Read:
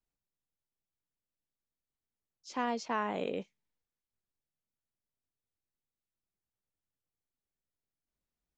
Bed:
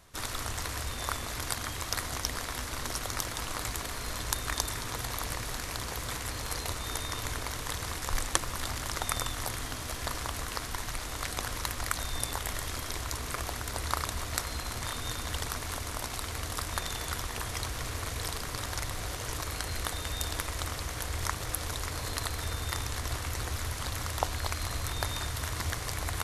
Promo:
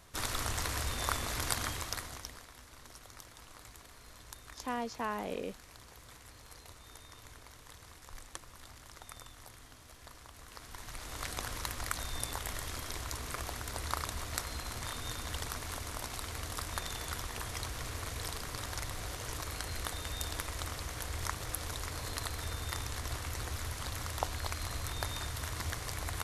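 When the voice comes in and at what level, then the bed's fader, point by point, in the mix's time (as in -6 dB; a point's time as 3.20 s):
2.10 s, -3.0 dB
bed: 1.66 s 0 dB
2.51 s -18 dB
10.32 s -18 dB
11.22 s -4.5 dB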